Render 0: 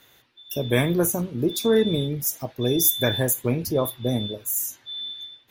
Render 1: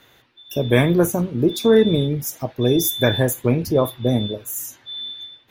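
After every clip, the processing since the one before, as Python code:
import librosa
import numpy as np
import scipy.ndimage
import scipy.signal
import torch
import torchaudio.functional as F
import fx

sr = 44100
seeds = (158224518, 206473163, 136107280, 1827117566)

y = fx.high_shelf(x, sr, hz=4600.0, db=-9.5)
y = y * librosa.db_to_amplitude(5.5)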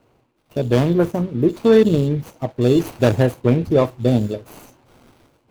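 y = scipy.signal.medfilt(x, 25)
y = fx.rider(y, sr, range_db=10, speed_s=2.0)
y = y * librosa.db_to_amplitude(1.5)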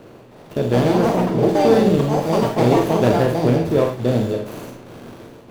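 y = fx.bin_compress(x, sr, power=0.6)
y = fx.echo_pitch(y, sr, ms=314, semitones=5, count=2, db_per_echo=-3.0)
y = fx.rev_schroeder(y, sr, rt60_s=0.3, comb_ms=33, drr_db=4.0)
y = y * librosa.db_to_amplitude(-5.5)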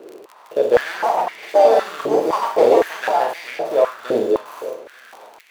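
y = x + 10.0 ** (-18.0 / 20.0) * np.pad(x, (int(886 * sr / 1000.0), 0))[:len(x)]
y = fx.dmg_crackle(y, sr, seeds[0], per_s=25.0, level_db=-26.0)
y = fx.filter_held_highpass(y, sr, hz=3.9, low_hz=390.0, high_hz=2100.0)
y = y * librosa.db_to_amplitude(-3.0)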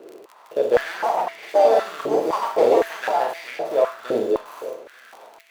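y = fx.comb_fb(x, sr, f0_hz=670.0, decay_s=0.47, harmonics='all', damping=0.0, mix_pct=60)
y = y * librosa.db_to_amplitude(4.5)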